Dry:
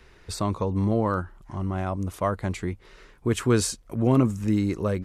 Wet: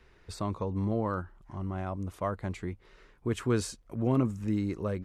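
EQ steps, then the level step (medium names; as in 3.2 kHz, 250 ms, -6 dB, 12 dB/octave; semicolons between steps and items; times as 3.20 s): treble shelf 4.8 kHz -6.5 dB; -6.5 dB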